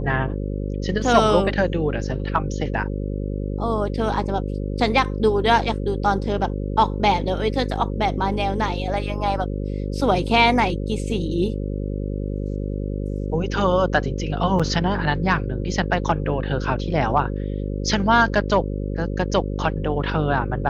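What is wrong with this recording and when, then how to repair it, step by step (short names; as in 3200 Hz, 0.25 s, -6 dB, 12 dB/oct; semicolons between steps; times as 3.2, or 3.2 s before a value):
buzz 50 Hz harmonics 11 -26 dBFS
14.59–14.6 gap 6.2 ms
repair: de-hum 50 Hz, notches 11; interpolate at 14.59, 6.2 ms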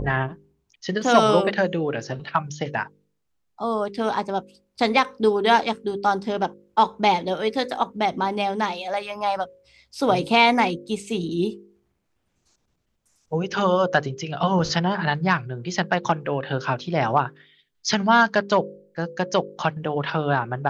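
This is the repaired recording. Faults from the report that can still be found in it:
none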